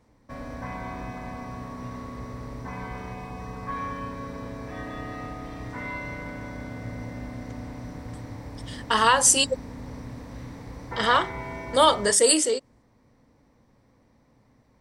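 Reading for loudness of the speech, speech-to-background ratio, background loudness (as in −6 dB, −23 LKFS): −20.5 LKFS, 16.5 dB, −37.0 LKFS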